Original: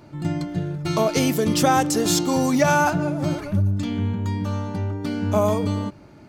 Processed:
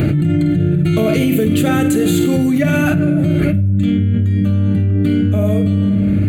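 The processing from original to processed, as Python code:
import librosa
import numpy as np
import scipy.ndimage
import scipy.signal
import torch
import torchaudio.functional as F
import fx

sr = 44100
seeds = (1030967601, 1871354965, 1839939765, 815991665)

p1 = scipy.signal.sosfilt(scipy.signal.butter(2, 45.0, 'highpass', fs=sr, output='sos'), x)
p2 = fx.low_shelf(p1, sr, hz=200.0, db=9.0)
p3 = fx.fixed_phaser(p2, sr, hz=2300.0, stages=4)
p4 = p3 + fx.room_flutter(p3, sr, wall_m=8.7, rt60_s=0.28, dry=0)
p5 = fx.room_shoebox(p4, sr, seeds[0], volume_m3=510.0, walls='mixed', distance_m=0.49)
p6 = fx.env_flatten(p5, sr, amount_pct=100)
y = p6 * 10.0 ** (-4.5 / 20.0)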